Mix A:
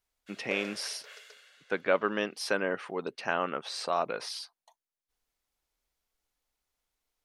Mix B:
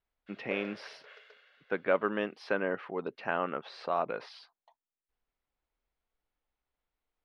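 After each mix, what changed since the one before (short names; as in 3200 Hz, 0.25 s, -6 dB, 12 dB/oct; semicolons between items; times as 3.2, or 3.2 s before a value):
master: add air absorption 340 m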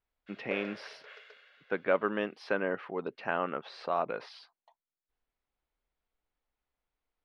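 reverb: on, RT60 0.50 s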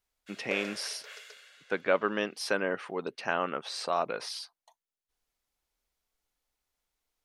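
master: remove air absorption 340 m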